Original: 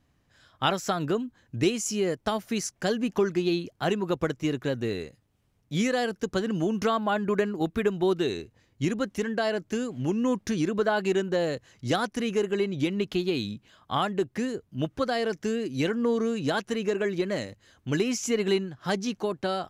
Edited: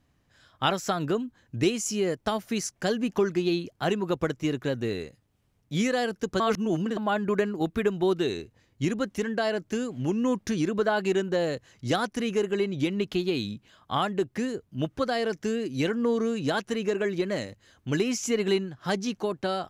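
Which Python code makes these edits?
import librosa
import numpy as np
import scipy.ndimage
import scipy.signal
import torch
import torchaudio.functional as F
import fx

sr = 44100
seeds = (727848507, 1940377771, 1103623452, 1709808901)

y = fx.edit(x, sr, fx.reverse_span(start_s=6.4, length_s=0.57), tone=tone)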